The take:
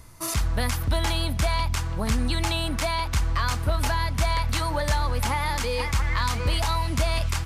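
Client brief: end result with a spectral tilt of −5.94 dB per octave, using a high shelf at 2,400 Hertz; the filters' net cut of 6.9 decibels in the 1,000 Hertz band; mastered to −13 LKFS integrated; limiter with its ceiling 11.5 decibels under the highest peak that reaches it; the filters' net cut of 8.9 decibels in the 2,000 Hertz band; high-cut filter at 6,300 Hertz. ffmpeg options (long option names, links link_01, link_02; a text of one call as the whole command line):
ffmpeg -i in.wav -af "lowpass=6300,equalizer=frequency=1000:width_type=o:gain=-5.5,equalizer=frequency=2000:width_type=o:gain=-6,highshelf=frequency=2400:gain=-7,volume=22dB,alimiter=limit=-4dB:level=0:latency=1" out.wav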